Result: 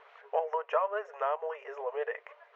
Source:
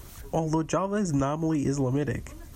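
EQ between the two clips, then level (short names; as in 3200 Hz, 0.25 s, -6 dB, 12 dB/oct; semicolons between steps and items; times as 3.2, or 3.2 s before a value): brick-wall FIR high-pass 420 Hz; LPF 2500 Hz 24 dB/oct; notch 530 Hz, Q 12; 0.0 dB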